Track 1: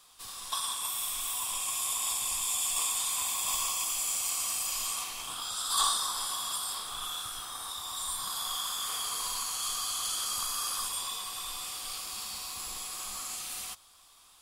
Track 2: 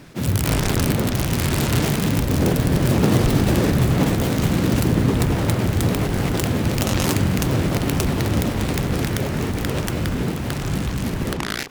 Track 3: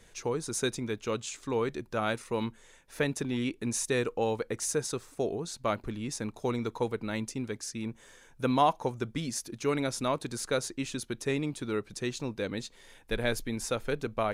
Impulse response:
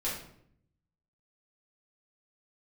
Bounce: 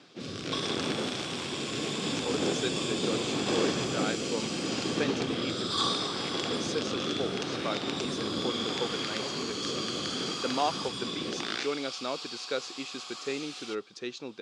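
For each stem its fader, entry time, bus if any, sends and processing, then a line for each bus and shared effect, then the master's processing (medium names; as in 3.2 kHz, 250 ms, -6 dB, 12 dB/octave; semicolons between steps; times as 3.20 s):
+1.5 dB, 0.00 s, no send, none
-4.5 dB, 0.00 s, no send, rotary cabinet horn 0.75 Hz
-0.5 dB, 2.00 s, muted 5.63–6.47 s, no send, none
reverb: none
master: cabinet simulation 330–5500 Hz, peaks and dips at 620 Hz -4 dB, 1 kHz -7 dB, 1.9 kHz -5 dB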